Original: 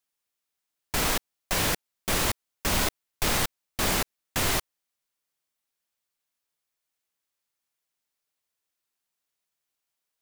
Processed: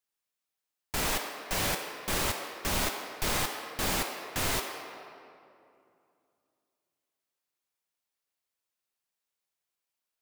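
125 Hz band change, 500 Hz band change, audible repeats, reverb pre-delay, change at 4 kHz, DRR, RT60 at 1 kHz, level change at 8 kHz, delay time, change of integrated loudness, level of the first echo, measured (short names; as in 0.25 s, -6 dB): -5.0 dB, -3.0 dB, none, 10 ms, -3.5 dB, 2.0 dB, 2.5 s, -4.0 dB, none, -4.0 dB, none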